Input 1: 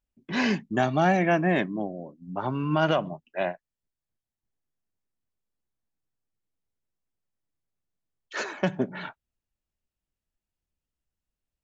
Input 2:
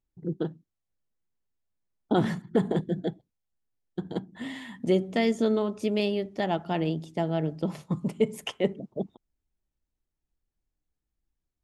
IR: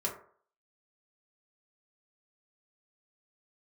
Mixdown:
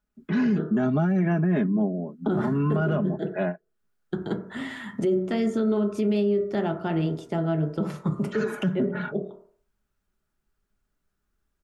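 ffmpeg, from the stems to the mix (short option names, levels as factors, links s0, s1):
-filter_complex "[0:a]equalizer=f=240:w=0.37:g=8.5,aecho=1:1:4.8:0.72,volume=0.891,asplit=2[s0][s1];[1:a]adelay=150,volume=1,asplit=2[s2][s3];[s3]volume=0.708[s4];[s1]apad=whole_len=519913[s5];[s2][s5]sidechaincompress=threshold=0.0355:ratio=8:attack=16:release=579[s6];[2:a]atrim=start_sample=2205[s7];[s4][s7]afir=irnorm=-1:irlink=0[s8];[s0][s6][s8]amix=inputs=3:normalize=0,equalizer=f=1400:w=2.7:g=12,acrossover=split=410[s9][s10];[s10]acompressor=threshold=0.0126:ratio=2[s11];[s9][s11]amix=inputs=2:normalize=0,alimiter=limit=0.15:level=0:latency=1:release=38"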